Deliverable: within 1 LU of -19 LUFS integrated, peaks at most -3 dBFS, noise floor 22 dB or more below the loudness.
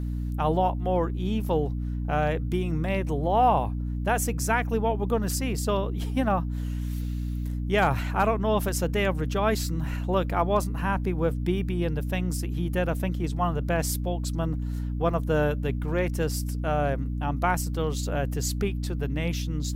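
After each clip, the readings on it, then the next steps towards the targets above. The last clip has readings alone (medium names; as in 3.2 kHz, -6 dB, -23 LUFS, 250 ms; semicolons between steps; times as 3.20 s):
hum 60 Hz; highest harmonic 300 Hz; hum level -27 dBFS; loudness -27.0 LUFS; peak level -10.5 dBFS; loudness target -19.0 LUFS
-> hum notches 60/120/180/240/300 Hz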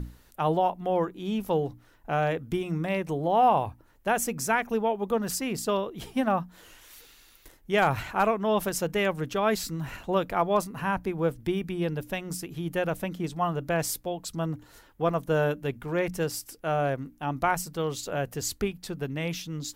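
hum not found; loudness -28.5 LUFS; peak level -11.5 dBFS; loudness target -19.0 LUFS
-> trim +9.5 dB; peak limiter -3 dBFS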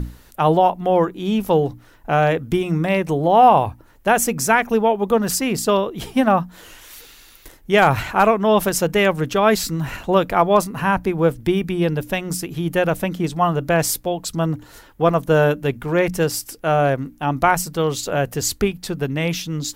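loudness -19.0 LUFS; peak level -3.0 dBFS; noise floor -48 dBFS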